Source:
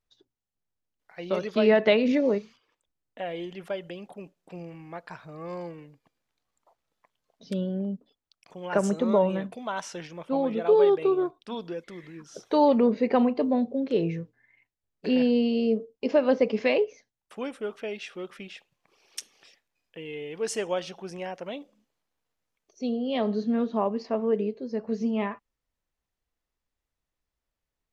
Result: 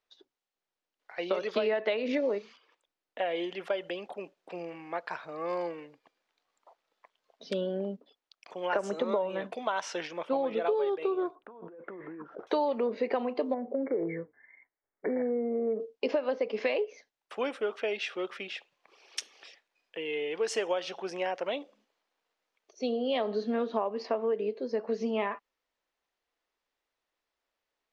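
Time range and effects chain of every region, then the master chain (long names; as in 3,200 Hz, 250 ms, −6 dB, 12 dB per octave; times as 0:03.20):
0:11.35–0:12.47: low-pass filter 1,400 Hz 24 dB per octave + compressor whose output falls as the input rises −46 dBFS
0:13.54–0:15.80: downward compressor 4 to 1, threshold −26 dBFS + linear-phase brick-wall low-pass 2,300 Hz
whole clip: three-way crossover with the lows and the highs turned down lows −21 dB, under 310 Hz, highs −15 dB, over 5,800 Hz; downward compressor 12 to 1, threshold −31 dBFS; level +5.5 dB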